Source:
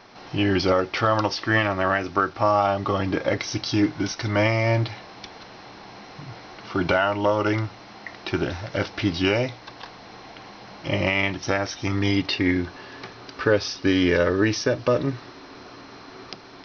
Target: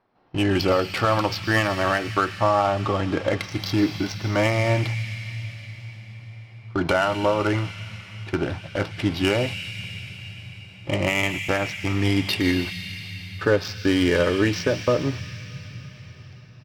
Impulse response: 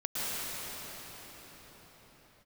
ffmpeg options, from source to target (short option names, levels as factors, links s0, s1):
-filter_complex "[0:a]agate=range=0.126:threshold=0.0316:ratio=16:detection=peak,adynamicsmooth=sensitivity=3:basefreq=2000,asplit=2[s0][s1];[s1]firequalizer=gain_entry='entry(170,0);entry(290,-27);entry(2500,7)':delay=0.05:min_phase=1[s2];[1:a]atrim=start_sample=2205[s3];[s2][s3]afir=irnorm=-1:irlink=0,volume=0.188[s4];[s0][s4]amix=inputs=2:normalize=0"